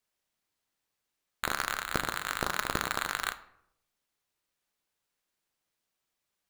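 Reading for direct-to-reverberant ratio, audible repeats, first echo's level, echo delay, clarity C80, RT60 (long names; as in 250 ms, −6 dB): 10.0 dB, no echo audible, no echo audible, no echo audible, 18.0 dB, 0.75 s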